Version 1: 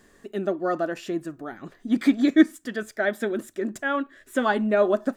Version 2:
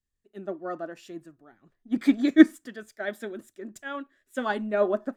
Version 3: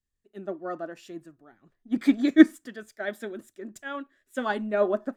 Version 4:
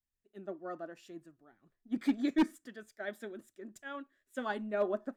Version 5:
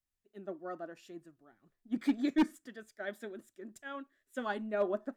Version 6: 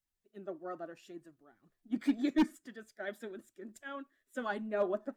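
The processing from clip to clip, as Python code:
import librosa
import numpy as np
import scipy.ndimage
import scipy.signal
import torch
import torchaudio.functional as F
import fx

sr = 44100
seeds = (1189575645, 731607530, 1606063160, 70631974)

y1 = fx.band_widen(x, sr, depth_pct=100)
y1 = y1 * librosa.db_to_amplitude(-6.0)
y2 = y1
y3 = np.clip(10.0 ** (13.5 / 20.0) * y2, -1.0, 1.0) / 10.0 ** (13.5 / 20.0)
y3 = y3 * librosa.db_to_amplitude(-8.0)
y4 = fx.wow_flutter(y3, sr, seeds[0], rate_hz=2.1, depth_cents=27.0)
y5 = fx.spec_quant(y4, sr, step_db=15)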